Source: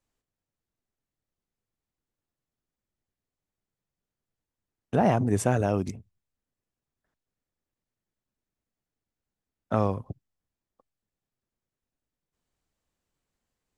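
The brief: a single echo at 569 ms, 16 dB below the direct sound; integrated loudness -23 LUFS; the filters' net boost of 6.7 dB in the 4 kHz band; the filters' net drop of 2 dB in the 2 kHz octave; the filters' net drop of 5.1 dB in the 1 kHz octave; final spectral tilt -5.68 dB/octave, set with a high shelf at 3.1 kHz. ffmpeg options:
-af "equalizer=f=1000:t=o:g=-8.5,equalizer=f=2000:t=o:g=-3,highshelf=f=3100:g=8.5,equalizer=f=4000:t=o:g=4,aecho=1:1:569:0.158,volume=1.68"

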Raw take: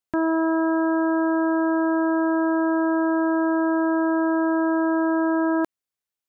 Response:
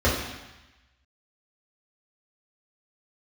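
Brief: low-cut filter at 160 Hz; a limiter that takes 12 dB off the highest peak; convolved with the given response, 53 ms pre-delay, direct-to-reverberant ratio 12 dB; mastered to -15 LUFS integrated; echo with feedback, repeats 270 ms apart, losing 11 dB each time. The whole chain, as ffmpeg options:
-filter_complex "[0:a]highpass=160,alimiter=level_in=1.12:limit=0.0631:level=0:latency=1,volume=0.891,aecho=1:1:270|540|810:0.282|0.0789|0.0221,asplit=2[s0][s1];[1:a]atrim=start_sample=2205,adelay=53[s2];[s1][s2]afir=irnorm=-1:irlink=0,volume=0.0355[s3];[s0][s3]amix=inputs=2:normalize=0,volume=7.94"

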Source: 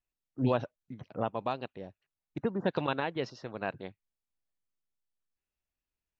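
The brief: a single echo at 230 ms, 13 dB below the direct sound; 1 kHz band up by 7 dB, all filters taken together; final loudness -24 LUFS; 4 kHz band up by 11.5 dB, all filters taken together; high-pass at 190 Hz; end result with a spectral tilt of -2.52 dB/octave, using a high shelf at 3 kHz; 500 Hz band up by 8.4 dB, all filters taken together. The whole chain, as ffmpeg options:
-af "highpass=190,equalizer=f=500:t=o:g=8.5,equalizer=f=1000:t=o:g=4.5,highshelf=f=3000:g=9,equalizer=f=4000:t=o:g=7.5,aecho=1:1:230:0.224,volume=1.58"

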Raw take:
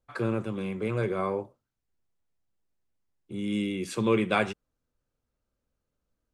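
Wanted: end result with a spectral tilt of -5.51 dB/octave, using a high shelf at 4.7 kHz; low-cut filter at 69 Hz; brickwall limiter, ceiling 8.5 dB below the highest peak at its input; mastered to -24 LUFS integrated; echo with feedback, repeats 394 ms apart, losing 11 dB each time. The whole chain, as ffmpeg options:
-af "highpass=69,highshelf=f=4700:g=7,alimiter=limit=0.119:level=0:latency=1,aecho=1:1:394|788|1182:0.282|0.0789|0.0221,volume=2.37"

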